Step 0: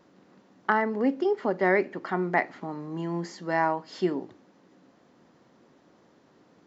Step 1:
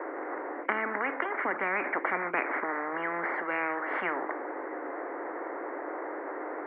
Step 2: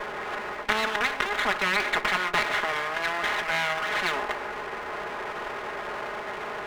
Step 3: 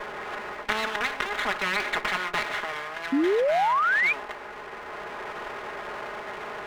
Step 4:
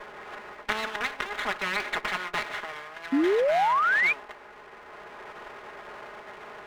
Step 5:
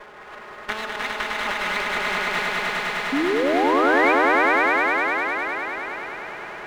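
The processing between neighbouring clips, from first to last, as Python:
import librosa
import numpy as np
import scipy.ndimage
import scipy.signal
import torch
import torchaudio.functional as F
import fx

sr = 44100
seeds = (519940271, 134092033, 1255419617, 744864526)

y1 = scipy.signal.sosfilt(scipy.signal.cheby1(5, 1.0, [310.0, 2100.0], 'bandpass', fs=sr, output='sos'), x)
y1 = fx.spectral_comp(y1, sr, ratio=10.0)
y2 = fx.lower_of_two(y1, sr, delay_ms=4.8)
y2 = fx.low_shelf(y2, sr, hz=480.0, db=-11.0)
y2 = y2 * librosa.db_to_amplitude(8.5)
y3 = fx.spec_paint(y2, sr, seeds[0], shape='rise', start_s=3.12, length_s=1.01, low_hz=260.0, high_hz=2500.0, level_db=-15.0)
y3 = fx.rider(y3, sr, range_db=5, speed_s=2.0)
y3 = y3 * librosa.db_to_amplitude(-7.0)
y4 = fx.upward_expand(y3, sr, threshold_db=-38.0, expansion=1.5)
y5 = fx.echo_swell(y4, sr, ms=102, loudest=5, wet_db=-3.5)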